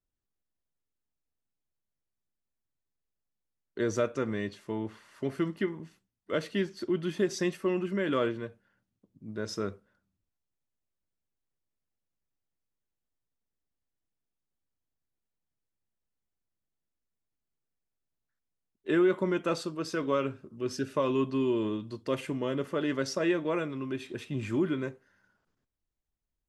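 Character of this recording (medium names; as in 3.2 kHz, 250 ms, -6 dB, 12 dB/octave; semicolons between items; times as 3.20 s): noise floor -86 dBFS; spectral tilt -5.5 dB/octave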